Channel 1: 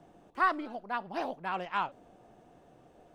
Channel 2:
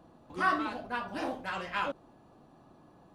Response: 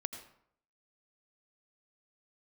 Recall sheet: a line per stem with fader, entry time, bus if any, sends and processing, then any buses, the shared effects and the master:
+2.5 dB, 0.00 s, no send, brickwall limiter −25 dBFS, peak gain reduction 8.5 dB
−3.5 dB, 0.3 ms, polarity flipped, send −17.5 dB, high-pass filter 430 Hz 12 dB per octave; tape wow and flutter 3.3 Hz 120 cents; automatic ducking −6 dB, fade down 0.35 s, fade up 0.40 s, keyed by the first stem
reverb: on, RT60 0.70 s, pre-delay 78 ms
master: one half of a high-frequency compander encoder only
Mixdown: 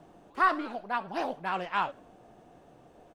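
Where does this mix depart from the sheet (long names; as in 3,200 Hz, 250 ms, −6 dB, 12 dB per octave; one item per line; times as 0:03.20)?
stem 1: missing brickwall limiter −25 dBFS, peak gain reduction 8.5 dB
master: missing one half of a high-frequency compander encoder only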